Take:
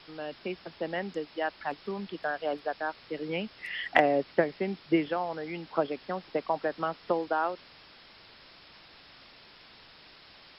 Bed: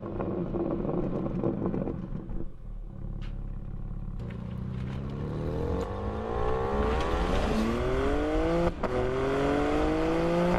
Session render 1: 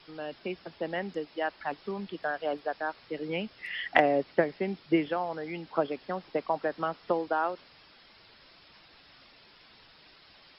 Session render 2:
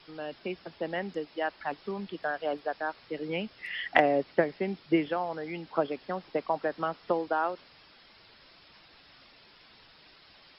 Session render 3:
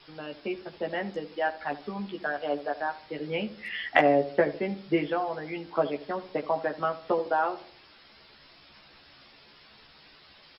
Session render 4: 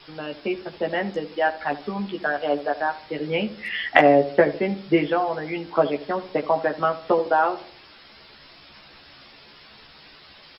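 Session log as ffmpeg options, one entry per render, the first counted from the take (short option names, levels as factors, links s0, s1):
-af "afftdn=nr=6:nf=-54"
-af anull
-filter_complex "[0:a]asplit=2[s0][s1];[s1]adelay=14,volume=0.708[s2];[s0][s2]amix=inputs=2:normalize=0,asplit=2[s3][s4];[s4]adelay=76,lowpass=f=880:p=1,volume=0.237,asplit=2[s5][s6];[s6]adelay=76,lowpass=f=880:p=1,volume=0.51,asplit=2[s7][s8];[s8]adelay=76,lowpass=f=880:p=1,volume=0.51,asplit=2[s9][s10];[s10]adelay=76,lowpass=f=880:p=1,volume=0.51,asplit=2[s11][s12];[s12]adelay=76,lowpass=f=880:p=1,volume=0.51[s13];[s3][s5][s7][s9][s11][s13]amix=inputs=6:normalize=0"
-af "volume=2.11,alimiter=limit=0.891:level=0:latency=1"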